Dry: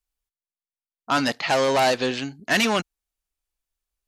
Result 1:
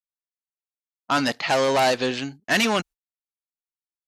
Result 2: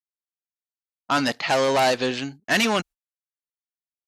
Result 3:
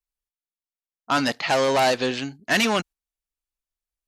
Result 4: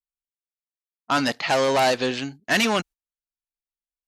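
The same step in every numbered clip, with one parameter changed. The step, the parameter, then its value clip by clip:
gate, range: -37 dB, -51 dB, -7 dB, -19 dB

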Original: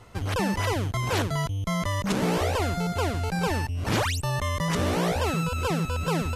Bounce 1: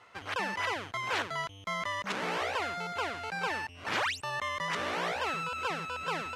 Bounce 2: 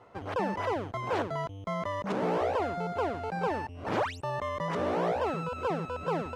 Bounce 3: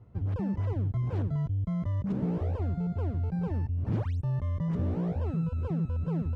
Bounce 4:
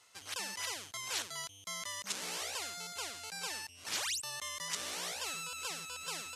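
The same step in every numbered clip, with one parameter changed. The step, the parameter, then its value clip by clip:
band-pass filter, frequency: 1.8 kHz, 660 Hz, 110 Hz, 7.2 kHz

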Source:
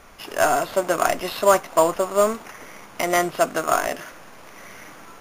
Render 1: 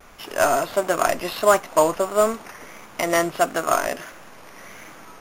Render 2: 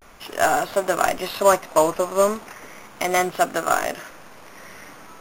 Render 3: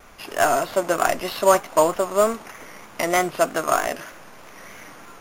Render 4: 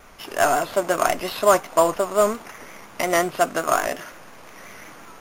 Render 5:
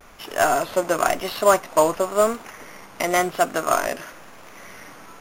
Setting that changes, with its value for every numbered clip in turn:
vibrato, rate: 1.5 Hz, 0.37 Hz, 3.2 Hz, 5.6 Hz, 0.97 Hz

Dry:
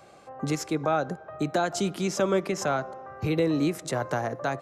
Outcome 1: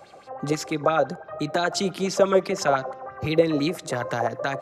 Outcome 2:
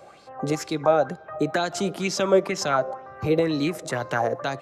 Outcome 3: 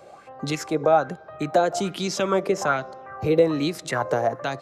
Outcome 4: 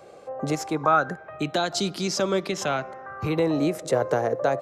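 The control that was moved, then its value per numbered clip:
sweeping bell, rate: 5.9 Hz, 2.1 Hz, 1.2 Hz, 0.24 Hz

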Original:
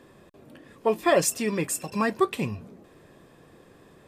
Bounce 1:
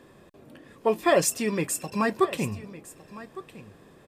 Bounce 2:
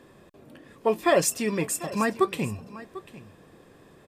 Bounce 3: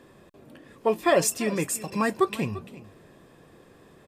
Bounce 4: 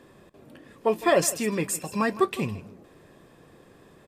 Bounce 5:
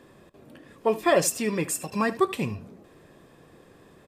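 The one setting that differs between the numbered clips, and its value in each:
delay, time: 1158 ms, 745 ms, 343 ms, 158 ms, 77 ms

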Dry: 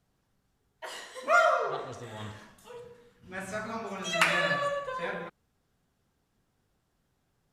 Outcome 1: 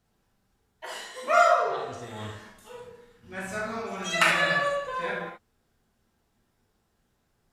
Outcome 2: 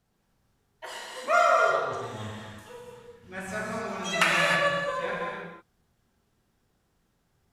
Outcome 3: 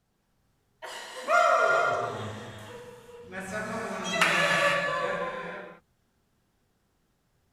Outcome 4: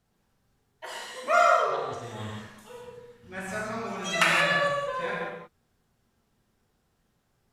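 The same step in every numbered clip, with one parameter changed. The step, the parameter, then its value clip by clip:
gated-style reverb, gate: 100 ms, 340 ms, 520 ms, 200 ms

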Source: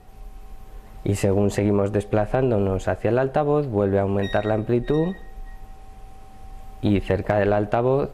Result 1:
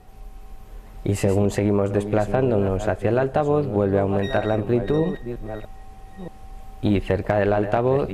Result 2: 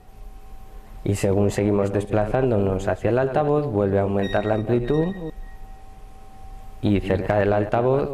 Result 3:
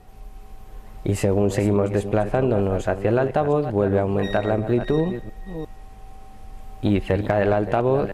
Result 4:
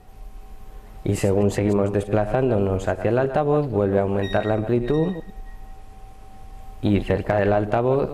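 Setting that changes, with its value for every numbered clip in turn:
chunks repeated in reverse, time: 628 ms, 171 ms, 353 ms, 102 ms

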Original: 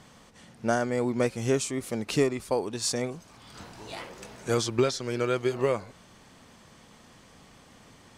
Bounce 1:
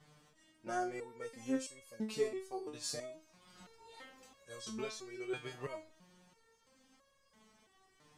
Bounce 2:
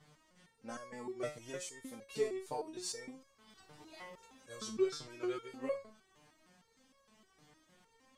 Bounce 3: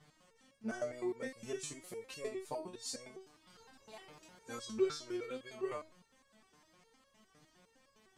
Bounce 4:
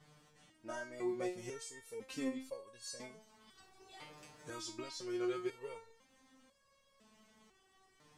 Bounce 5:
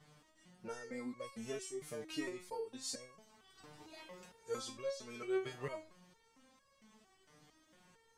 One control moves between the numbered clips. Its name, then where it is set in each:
resonator arpeggio, rate: 3 Hz, 6.5 Hz, 9.8 Hz, 2 Hz, 4.4 Hz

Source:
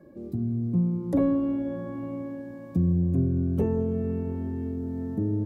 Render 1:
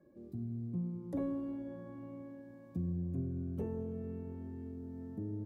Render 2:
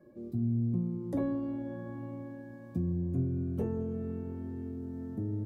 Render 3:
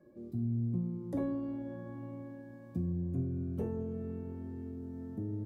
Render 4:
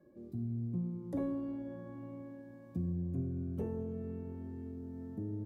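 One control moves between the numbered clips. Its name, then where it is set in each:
feedback comb, decay: 2.1 s, 0.17 s, 0.4 s, 0.98 s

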